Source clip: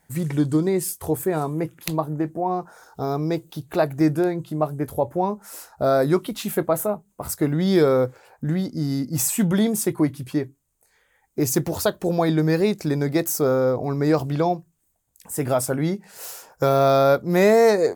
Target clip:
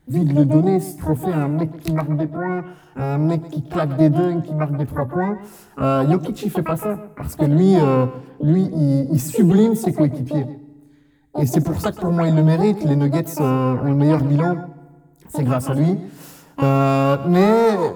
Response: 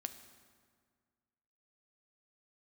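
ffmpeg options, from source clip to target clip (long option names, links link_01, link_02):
-filter_complex "[0:a]bass=frequency=250:gain=14,treble=frequency=4000:gain=-5,asplit=2[link_01][link_02];[link_02]asetrate=88200,aresample=44100,atempo=0.5,volume=-6dB[link_03];[link_01][link_03]amix=inputs=2:normalize=0,asplit=2[link_04][link_05];[1:a]atrim=start_sample=2205,asetrate=52920,aresample=44100,adelay=129[link_06];[link_05][link_06]afir=irnorm=-1:irlink=0,volume=-10.5dB[link_07];[link_04][link_07]amix=inputs=2:normalize=0,volume=-3.5dB"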